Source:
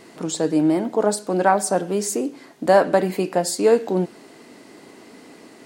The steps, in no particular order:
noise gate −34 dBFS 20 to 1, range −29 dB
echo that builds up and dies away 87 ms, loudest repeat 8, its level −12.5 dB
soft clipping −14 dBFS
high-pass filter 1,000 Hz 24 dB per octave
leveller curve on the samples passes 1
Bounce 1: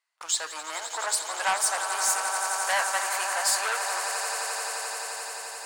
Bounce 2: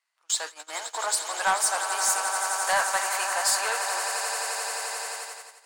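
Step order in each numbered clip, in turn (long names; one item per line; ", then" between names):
noise gate, then echo that builds up and dies away, then soft clipping, then high-pass filter, then leveller curve on the samples
echo that builds up and dies away, then leveller curve on the samples, then high-pass filter, then noise gate, then soft clipping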